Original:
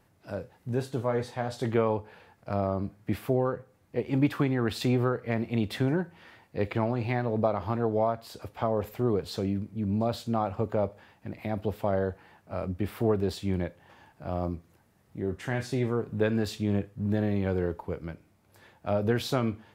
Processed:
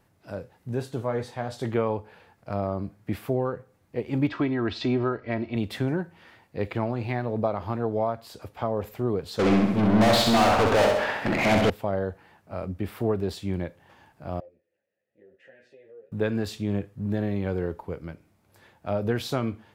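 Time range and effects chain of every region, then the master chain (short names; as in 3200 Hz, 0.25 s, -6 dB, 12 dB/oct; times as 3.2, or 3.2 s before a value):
4.27–5.56 LPF 5200 Hz 24 dB/oct + comb 3.1 ms, depth 54%
9.39–11.7 high shelf 5100 Hz -11.5 dB + overdrive pedal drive 35 dB, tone 7600 Hz, clips at -15 dBFS + feedback echo 65 ms, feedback 54%, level -3.5 dB
14.4–16.12 compressor, threshold -30 dBFS + vowel filter e + ensemble effect
whole clip: dry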